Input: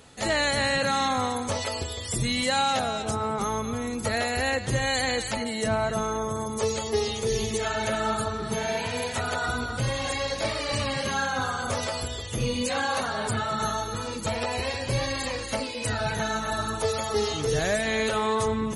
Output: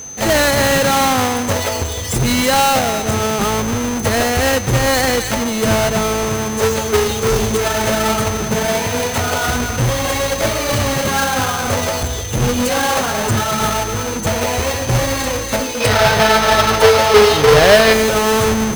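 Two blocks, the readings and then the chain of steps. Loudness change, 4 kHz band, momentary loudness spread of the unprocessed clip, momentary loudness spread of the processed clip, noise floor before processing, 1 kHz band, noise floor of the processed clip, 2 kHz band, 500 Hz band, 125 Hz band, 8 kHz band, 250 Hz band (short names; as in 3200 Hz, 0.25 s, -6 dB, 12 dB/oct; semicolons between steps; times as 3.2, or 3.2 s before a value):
+12.0 dB, +10.5 dB, 5 LU, 8 LU, -34 dBFS, +11.0 dB, -23 dBFS, +11.0 dB, +13.0 dB, +12.0 dB, +13.5 dB, +12.0 dB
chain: half-waves squared off; spectral gain 15.81–17.93, 390–5600 Hz +7 dB; whine 6200 Hz -35 dBFS; gain +6 dB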